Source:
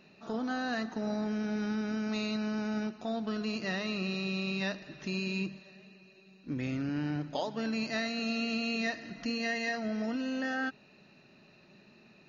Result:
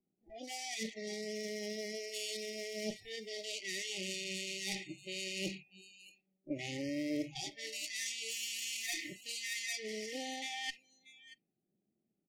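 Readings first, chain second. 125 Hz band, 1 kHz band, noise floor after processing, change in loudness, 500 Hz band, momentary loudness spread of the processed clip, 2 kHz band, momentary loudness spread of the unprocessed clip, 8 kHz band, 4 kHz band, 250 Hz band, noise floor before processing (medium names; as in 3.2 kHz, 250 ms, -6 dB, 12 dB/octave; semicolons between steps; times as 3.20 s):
-13.0 dB, -11.0 dB, -85 dBFS, -5.5 dB, -5.5 dB, 12 LU, -6.0 dB, 5 LU, no reading, +0.5 dB, -12.0 dB, -60 dBFS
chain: comb filter that takes the minimum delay 0.86 ms; level-controlled noise filter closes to 340 Hz, open at -31 dBFS; tilt EQ +3.5 dB/octave; reverse; compression 16:1, threshold -43 dBFS, peak gain reduction 15.5 dB; reverse; hum notches 50/100/150 Hz; on a send: delay 633 ms -14.5 dB; on the sum: spectral noise reduction 25 dB; graphic EQ with 31 bands 315 Hz +6 dB, 1 kHz +4 dB, 2.5 kHz -7 dB, 4 kHz -8 dB; FFT band-reject 820–1800 Hz; trim +10.5 dB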